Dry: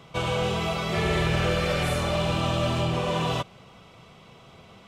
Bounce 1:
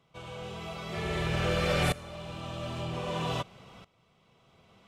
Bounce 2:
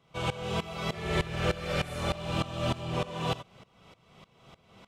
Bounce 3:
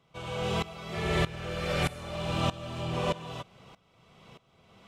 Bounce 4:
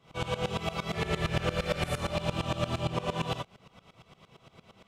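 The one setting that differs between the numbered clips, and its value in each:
dB-ramp tremolo, rate: 0.52, 3.3, 1.6, 8.7 Hz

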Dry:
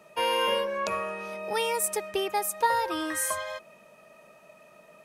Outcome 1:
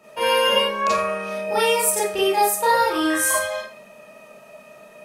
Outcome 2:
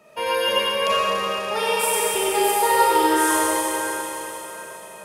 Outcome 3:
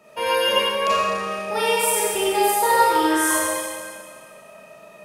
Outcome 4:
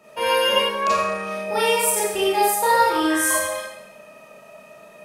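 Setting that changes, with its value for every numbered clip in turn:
Schroeder reverb, RT60: 0.36, 4.4, 1.8, 0.79 s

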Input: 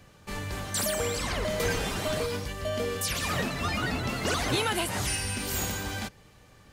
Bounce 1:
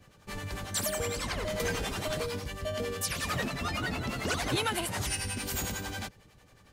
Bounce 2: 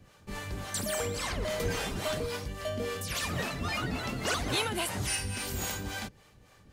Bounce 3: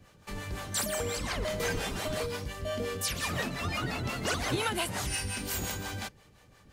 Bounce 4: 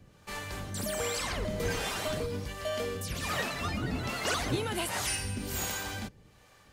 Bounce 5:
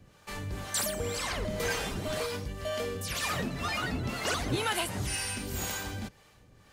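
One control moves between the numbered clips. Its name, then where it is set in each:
harmonic tremolo, rate: 11, 3.6, 5.7, 1.3, 2 Hz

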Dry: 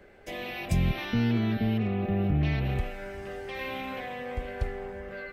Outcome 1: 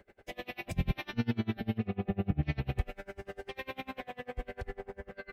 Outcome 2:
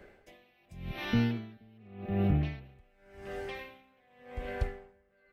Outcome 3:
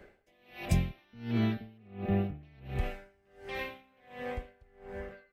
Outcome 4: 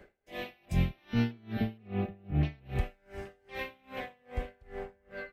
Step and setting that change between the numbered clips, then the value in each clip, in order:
dB-linear tremolo, rate: 10, 0.88, 1.4, 2.5 Hz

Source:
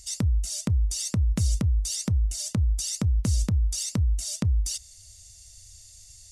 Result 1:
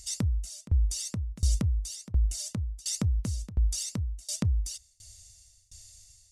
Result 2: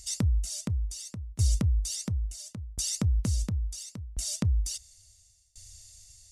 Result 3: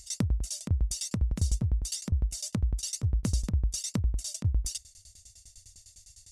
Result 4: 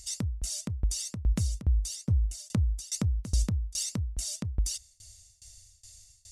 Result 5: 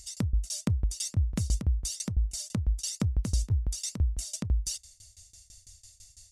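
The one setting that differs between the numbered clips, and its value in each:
tremolo, rate: 1.4, 0.72, 9.9, 2.4, 6 Hz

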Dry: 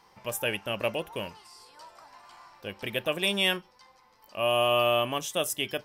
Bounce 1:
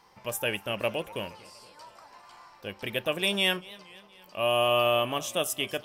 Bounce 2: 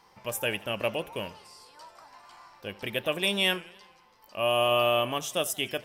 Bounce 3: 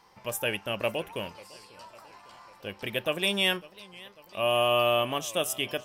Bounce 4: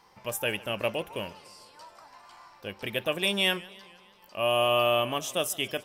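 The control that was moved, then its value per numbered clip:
warbling echo, time: 237, 85, 549, 151 ms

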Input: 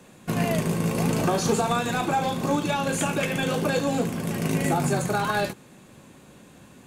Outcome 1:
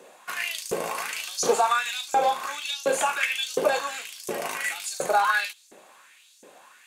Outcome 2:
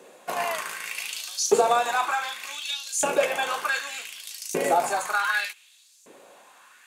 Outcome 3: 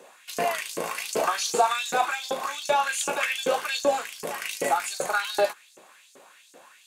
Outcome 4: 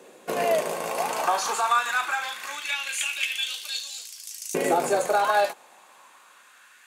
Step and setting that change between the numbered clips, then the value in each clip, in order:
LFO high-pass, rate: 1.4, 0.66, 2.6, 0.22 Hz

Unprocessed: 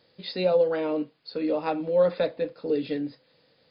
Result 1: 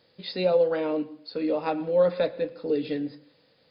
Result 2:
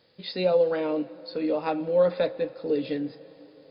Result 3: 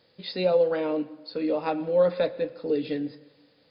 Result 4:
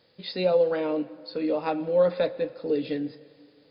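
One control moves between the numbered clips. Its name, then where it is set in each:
plate-style reverb, RT60: 0.51, 5, 1.1, 2.3 s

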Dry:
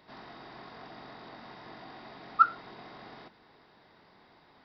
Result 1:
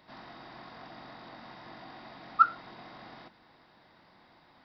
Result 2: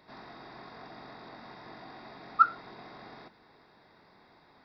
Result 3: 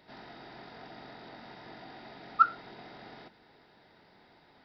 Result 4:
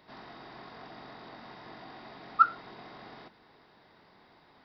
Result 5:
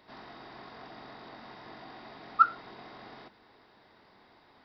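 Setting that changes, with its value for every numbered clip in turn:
notch, frequency: 420, 3000, 1100, 7600, 160 Hz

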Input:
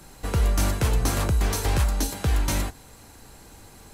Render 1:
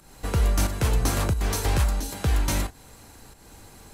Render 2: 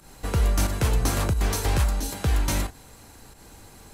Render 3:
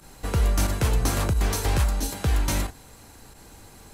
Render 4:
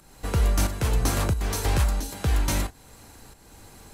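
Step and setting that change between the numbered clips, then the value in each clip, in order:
pump, release: 270, 130, 65, 460 ms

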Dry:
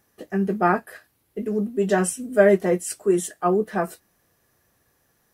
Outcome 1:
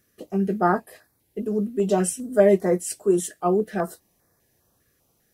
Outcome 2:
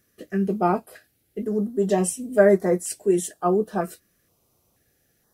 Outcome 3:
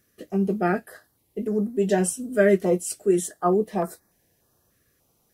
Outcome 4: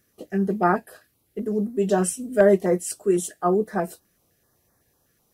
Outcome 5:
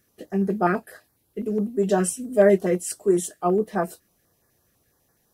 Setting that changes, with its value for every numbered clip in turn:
stepped notch, rate: 5, 2.1, 3.4, 7.9, 12 Hz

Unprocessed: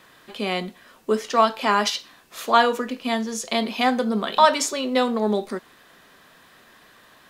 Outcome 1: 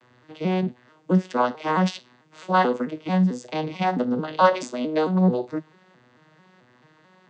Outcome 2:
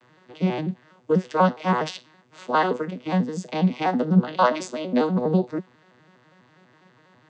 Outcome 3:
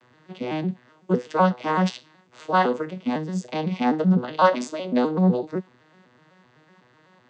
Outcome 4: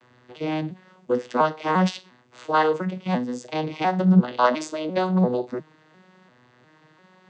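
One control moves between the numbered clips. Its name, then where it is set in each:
arpeggiated vocoder, a note every: 220, 82, 126, 349 ms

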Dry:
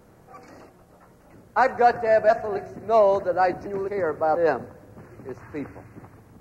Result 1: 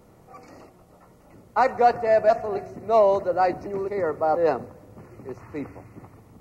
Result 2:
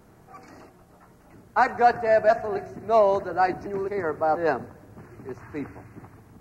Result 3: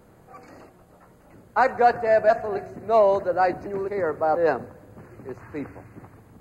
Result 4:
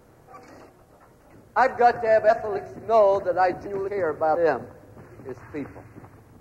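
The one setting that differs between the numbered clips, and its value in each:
notch, frequency: 1600, 530, 5600, 190 Hz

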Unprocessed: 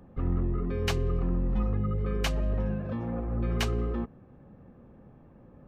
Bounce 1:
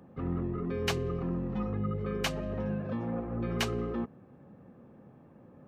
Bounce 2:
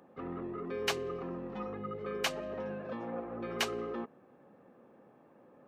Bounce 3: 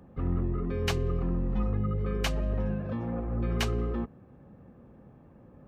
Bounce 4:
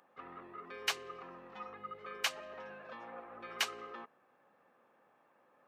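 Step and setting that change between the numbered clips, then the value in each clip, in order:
HPF, cutoff: 120, 360, 41, 1000 Hz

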